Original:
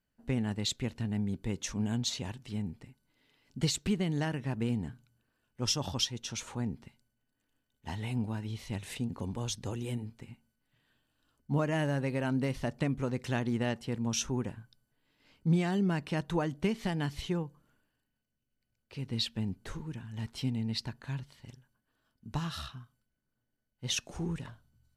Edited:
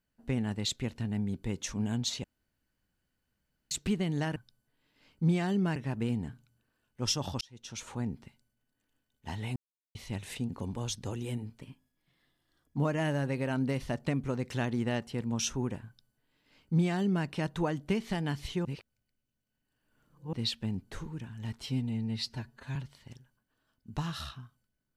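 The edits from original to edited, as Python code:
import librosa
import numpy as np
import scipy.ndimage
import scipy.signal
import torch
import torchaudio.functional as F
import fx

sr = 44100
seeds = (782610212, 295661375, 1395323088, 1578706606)

y = fx.edit(x, sr, fx.room_tone_fill(start_s=2.24, length_s=1.47),
    fx.fade_in_span(start_s=6.01, length_s=0.52),
    fx.silence(start_s=8.16, length_s=0.39),
    fx.speed_span(start_s=10.21, length_s=1.3, speed=1.12),
    fx.duplicate(start_s=14.6, length_s=1.4, to_s=4.36),
    fx.reverse_span(start_s=17.39, length_s=1.68),
    fx.stretch_span(start_s=20.4, length_s=0.73, factor=1.5), tone=tone)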